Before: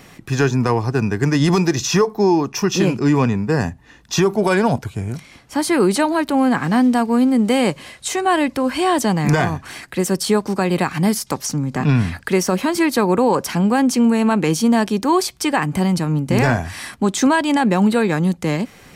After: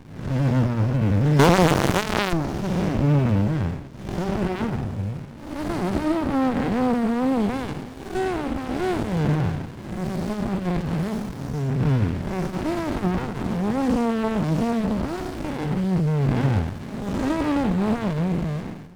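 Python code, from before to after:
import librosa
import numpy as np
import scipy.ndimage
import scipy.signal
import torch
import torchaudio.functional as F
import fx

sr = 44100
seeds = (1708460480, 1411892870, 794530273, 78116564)

p1 = fx.spec_blur(x, sr, span_ms=279.0)
p2 = fx.quant_dither(p1, sr, seeds[0], bits=6, dither='none')
p3 = p1 + (p2 * 10.0 ** (-8.0 / 20.0))
p4 = fx.high_shelf(p3, sr, hz=5300.0, db=-8.0)
p5 = fx.hum_notches(p4, sr, base_hz=60, count=2)
p6 = fx.leveller(p5, sr, passes=5, at=(1.39, 2.33))
p7 = p6 + fx.echo_single(p6, sr, ms=669, db=-24.0, dry=0)
p8 = fx.running_max(p7, sr, window=65)
y = p8 * 10.0 ** (-2.0 / 20.0)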